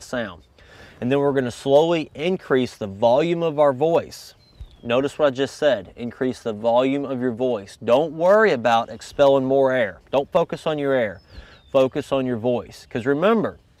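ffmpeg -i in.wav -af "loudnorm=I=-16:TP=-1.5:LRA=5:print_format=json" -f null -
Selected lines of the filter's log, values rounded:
"input_i" : "-21.1",
"input_tp" : "-4.4",
"input_lra" : "3.7",
"input_thresh" : "-31.6",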